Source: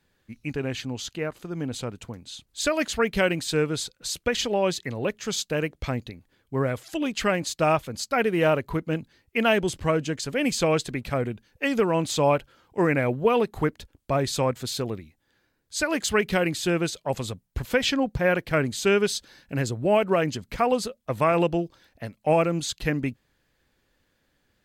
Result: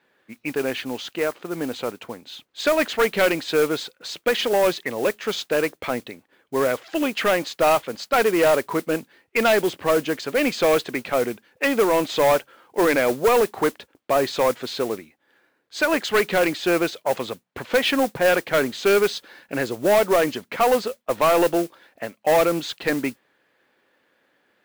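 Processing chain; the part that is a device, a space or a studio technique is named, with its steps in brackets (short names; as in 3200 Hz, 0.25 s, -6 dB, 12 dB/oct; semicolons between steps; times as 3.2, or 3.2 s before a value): carbon microphone (BPF 350–2700 Hz; soft clip -21 dBFS, distortion -11 dB; modulation noise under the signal 17 dB); gain +9 dB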